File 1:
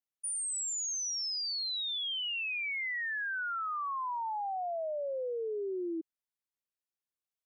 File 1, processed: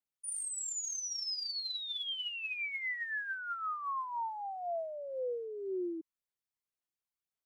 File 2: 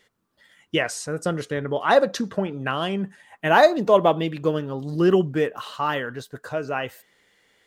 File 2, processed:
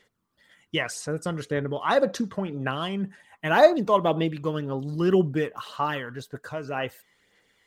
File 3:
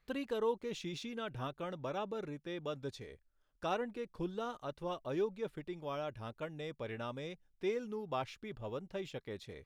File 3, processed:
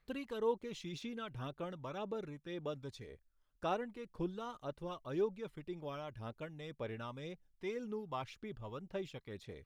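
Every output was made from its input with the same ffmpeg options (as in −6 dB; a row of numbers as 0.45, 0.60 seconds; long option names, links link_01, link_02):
-af "aphaser=in_gain=1:out_gain=1:delay=1:decay=0.4:speed=1.9:type=sinusoidal,volume=-4dB"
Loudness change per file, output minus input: −3.0, −3.0, −2.0 LU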